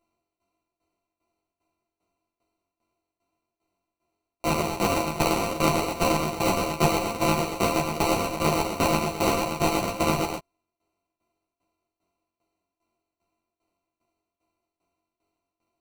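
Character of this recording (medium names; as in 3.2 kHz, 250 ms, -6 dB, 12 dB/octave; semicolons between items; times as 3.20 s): a buzz of ramps at a fixed pitch in blocks of 64 samples; tremolo saw down 2.5 Hz, depth 85%; aliases and images of a low sample rate 1.7 kHz, jitter 0%; a shimmering, thickened sound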